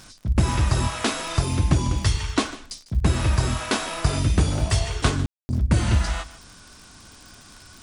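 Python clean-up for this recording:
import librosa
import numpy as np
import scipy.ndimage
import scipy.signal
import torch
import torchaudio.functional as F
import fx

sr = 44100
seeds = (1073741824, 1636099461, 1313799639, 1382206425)

y = fx.fix_declick_ar(x, sr, threshold=6.5)
y = fx.fix_ambience(y, sr, seeds[0], print_start_s=6.53, print_end_s=7.03, start_s=5.26, end_s=5.49)
y = fx.fix_echo_inverse(y, sr, delay_ms=150, level_db=-17.5)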